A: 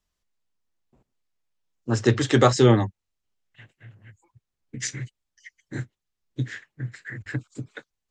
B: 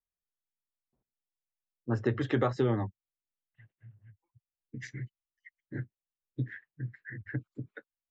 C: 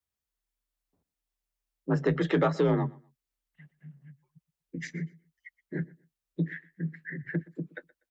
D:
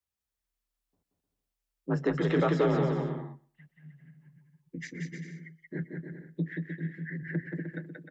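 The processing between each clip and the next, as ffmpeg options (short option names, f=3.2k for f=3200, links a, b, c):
-af "afftdn=nr=14:nf=-39,lowpass=2.3k,acompressor=threshold=-18dB:ratio=6,volume=-5.5dB"
-af "asoftclip=type=tanh:threshold=-19dB,aecho=1:1:122|244:0.075|0.0165,afreqshift=38,volume=4.5dB"
-af "aecho=1:1:180|306|394.2|455.9|499.2:0.631|0.398|0.251|0.158|0.1,volume=-2.5dB"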